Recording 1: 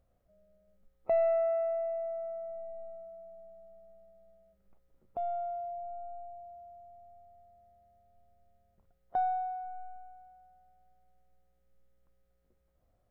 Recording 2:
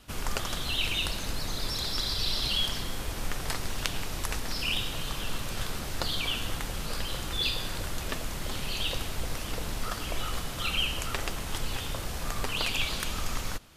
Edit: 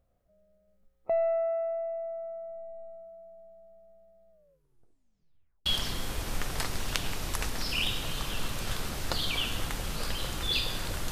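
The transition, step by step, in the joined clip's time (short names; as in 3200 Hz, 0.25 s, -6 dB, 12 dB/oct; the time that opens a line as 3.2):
recording 1
4.3 tape stop 1.36 s
5.66 switch to recording 2 from 2.56 s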